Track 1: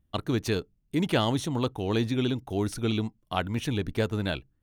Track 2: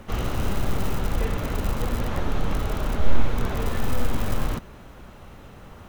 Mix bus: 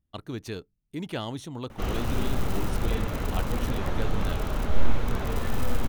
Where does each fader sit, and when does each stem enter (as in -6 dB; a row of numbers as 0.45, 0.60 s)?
-8.0, -2.5 dB; 0.00, 1.70 s